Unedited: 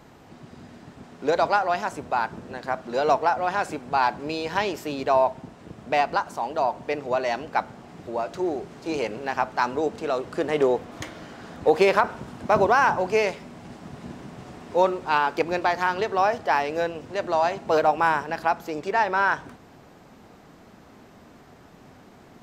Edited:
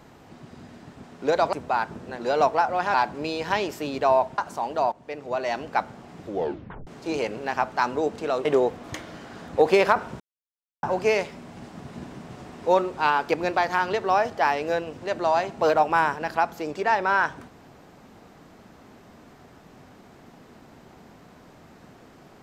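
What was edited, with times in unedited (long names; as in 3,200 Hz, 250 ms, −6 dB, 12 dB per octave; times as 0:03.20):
0:01.53–0:01.95: remove
0:02.61–0:02.87: remove
0:03.62–0:03.99: remove
0:05.43–0:06.18: remove
0:06.72–0:07.43: fade in, from −14 dB
0:08.05: tape stop 0.62 s
0:10.25–0:10.53: remove
0:12.28–0:12.91: silence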